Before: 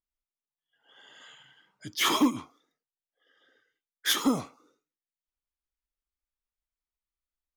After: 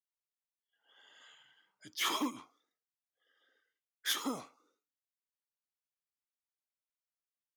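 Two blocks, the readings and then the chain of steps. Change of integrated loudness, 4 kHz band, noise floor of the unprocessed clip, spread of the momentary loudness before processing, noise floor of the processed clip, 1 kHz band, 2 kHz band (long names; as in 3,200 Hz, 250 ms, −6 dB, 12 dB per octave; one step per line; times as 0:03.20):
−9.0 dB, −7.5 dB, below −85 dBFS, 13 LU, below −85 dBFS, −8.0 dB, −7.5 dB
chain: high-pass filter 440 Hz 6 dB per octave
level −7.5 dB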